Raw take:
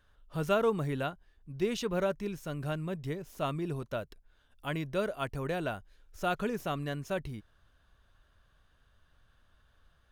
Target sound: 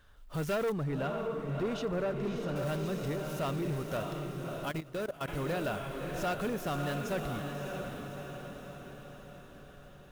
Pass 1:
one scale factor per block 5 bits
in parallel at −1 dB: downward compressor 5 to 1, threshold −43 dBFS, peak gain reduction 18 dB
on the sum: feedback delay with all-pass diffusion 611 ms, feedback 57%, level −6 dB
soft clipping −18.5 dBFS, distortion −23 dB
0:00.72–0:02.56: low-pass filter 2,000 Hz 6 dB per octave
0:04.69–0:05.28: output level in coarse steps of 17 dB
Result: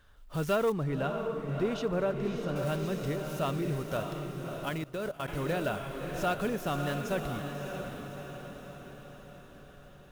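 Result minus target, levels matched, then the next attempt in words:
soft clipping: distortion −11 dB
one scale factor per block 5 bits
in parallel at −1 dB: downward compressor 5 to 1, threshold −43 dBFS, peak gain reduction 18 dB
on the sum: feedback delay with all-pass diffusion 611 ms, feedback 57%, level −6 dB
soft clipping −27 dBFS, distortion −12 dB
0:00.72–0:02.56: low-pass filter 2,000 Hz 6 dB per octave
0:04.69–0:05.28: output level in coarse steps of 17 dB

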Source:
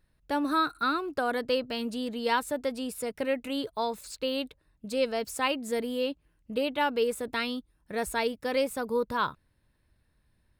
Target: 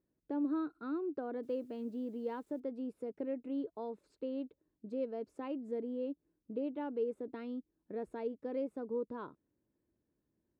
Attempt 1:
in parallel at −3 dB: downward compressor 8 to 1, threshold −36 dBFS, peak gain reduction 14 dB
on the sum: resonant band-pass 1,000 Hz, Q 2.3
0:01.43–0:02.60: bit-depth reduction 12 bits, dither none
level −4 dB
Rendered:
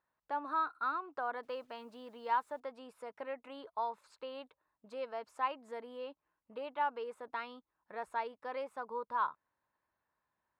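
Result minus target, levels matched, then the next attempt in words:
250 Hz band −15.5 dB
in parallel at −3 dB: downward compressor 8 to 1, threshold −36 dBFS, peak gain reduction 14 dB
on the sum: resonant band-pass 330 Hz, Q 2.3
0:01.43–0:02.60: bit-depth reduction 12 bits, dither none
level −4 dB

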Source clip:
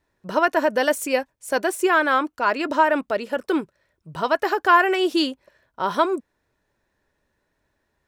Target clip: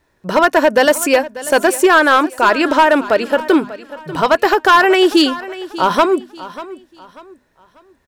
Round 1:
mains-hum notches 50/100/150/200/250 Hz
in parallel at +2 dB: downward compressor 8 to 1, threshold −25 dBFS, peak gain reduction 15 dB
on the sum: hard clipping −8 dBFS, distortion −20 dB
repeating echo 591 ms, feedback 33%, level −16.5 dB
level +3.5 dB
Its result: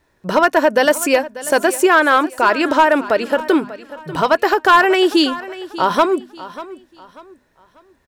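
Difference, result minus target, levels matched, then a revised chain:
downward compressor: peak gain reduction +7 dB
mains-hum notches 50/100/150/200/250 Hz
in parallel at +2 dB: downward compressor 8 to 1, threshold −17 dBFS, peak gain reduction 8 dB
on the sum: hard clipping −8 dBFS, distortion −15 dB
repeating echo 591 ms, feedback 33%, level −16.5 dB
level +3.5 dB

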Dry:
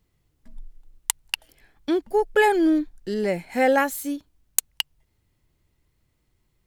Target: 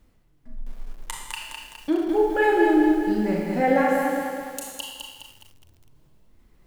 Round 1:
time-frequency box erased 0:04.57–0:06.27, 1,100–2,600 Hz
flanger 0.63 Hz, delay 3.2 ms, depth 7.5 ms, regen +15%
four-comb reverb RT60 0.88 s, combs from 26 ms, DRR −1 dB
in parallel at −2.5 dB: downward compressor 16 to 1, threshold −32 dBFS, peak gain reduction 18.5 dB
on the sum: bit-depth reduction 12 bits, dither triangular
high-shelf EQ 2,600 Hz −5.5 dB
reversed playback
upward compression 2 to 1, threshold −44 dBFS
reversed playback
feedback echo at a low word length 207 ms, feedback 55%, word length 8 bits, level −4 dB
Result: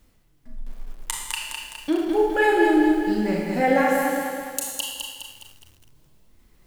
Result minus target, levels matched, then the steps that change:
4,000 Hz band +4.5 dB
change: high-shelf EQ 2,600 Hz −13.5 dB

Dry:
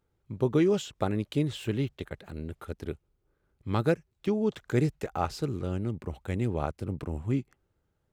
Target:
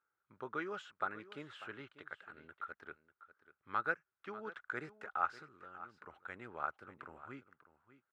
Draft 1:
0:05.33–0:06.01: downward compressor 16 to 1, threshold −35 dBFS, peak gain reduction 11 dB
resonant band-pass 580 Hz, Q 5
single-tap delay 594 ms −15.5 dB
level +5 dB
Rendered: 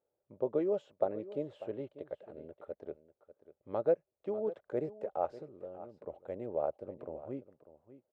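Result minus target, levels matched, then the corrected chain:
500 Hz band +9.5 dB
0:05.33–0:06.01: downward compressor 16 to 1, threshold −35 dBFS, peak gain reduction 11 dB
resonant band-pass 1,400 Hz, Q 5
single-tap delay 594 ms −15.5 dB
level +5 dB

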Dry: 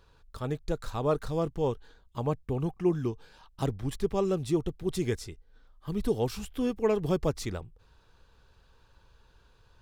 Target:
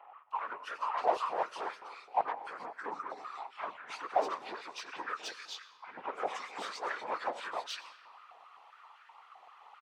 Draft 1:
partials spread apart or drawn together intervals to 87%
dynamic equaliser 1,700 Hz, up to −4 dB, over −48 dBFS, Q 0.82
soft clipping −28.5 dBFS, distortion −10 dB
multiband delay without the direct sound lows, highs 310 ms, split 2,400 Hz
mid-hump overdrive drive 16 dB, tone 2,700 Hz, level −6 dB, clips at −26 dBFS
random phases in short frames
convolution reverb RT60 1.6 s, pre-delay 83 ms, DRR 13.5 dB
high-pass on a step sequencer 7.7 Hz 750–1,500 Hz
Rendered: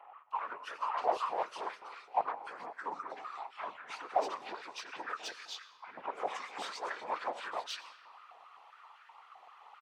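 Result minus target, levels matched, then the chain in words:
soft clipping: distortion +10 dB
partials spread apart or drawn together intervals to 87%
dynamic equaliser 1,700 Hz, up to −4 dB, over −48 dBFS, Q 0.82
soft clipping −19.5 dBFS, distortion −20 dB
multiband delay without the direct sound lows, highs 310 ms, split 2,400 Hz
mid-hump overdrive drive 16 dB, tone 2,700 Hz, level −6 dB, clips at −26 dBFS
random phases in short frames
convolution reverb RT60 1.6 s, pre-delay 83 ms, DRR 13.5 dB
high-pass on a step sequencer 7.7 Hz 750–1,500 Hz

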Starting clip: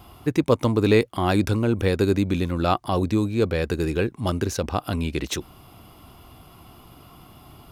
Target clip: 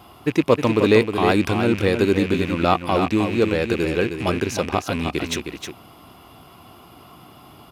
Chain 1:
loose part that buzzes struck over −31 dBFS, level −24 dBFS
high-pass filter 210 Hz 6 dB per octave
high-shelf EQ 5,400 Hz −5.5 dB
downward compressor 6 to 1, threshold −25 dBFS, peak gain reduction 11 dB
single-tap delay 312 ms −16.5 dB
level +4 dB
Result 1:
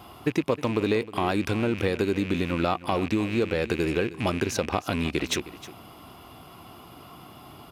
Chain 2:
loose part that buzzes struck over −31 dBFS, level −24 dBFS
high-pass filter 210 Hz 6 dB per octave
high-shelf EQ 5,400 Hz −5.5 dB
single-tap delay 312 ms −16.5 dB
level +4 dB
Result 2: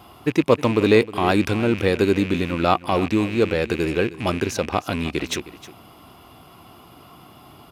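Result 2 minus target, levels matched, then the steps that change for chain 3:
echo-to-direct −9.5 dB
change: single-tap delay 312 ms −7 dB

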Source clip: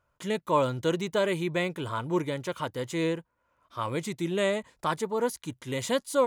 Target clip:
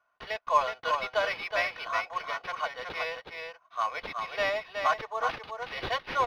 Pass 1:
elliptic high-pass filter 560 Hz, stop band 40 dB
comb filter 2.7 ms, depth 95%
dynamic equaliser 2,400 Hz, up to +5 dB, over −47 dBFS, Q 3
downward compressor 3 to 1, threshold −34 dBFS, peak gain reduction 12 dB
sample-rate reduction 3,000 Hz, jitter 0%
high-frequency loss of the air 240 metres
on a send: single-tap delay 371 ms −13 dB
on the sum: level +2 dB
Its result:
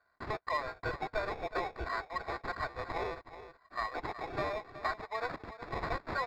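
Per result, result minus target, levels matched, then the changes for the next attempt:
downward compressor: peak gain reduction +12 dB; sample-rate reduction: distortion +14 dB; echo-to-direct −7.5 dB
remove: downward compressor 3 to 1, threshold −34 dBFS, peak gain reduction 12 dB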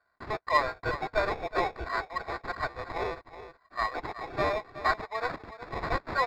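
sample-rate reduction: distortion +12 dB; echo-to-direct −7.5 dB
change: sample-rate reduction 7,500 Hz, jitter 0%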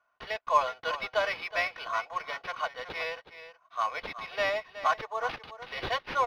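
echo-to-direct −7.5 dB
change: single-tap delay 371 ms −5.5 dB

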